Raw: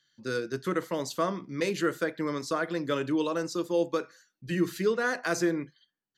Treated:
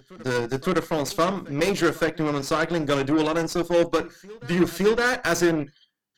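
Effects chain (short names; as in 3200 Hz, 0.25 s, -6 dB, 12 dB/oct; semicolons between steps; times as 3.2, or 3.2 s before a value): added harmonics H 8 -19 dB, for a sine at -16 dBFS; reverse echo 0.562 s -22 dB; gain +6 dB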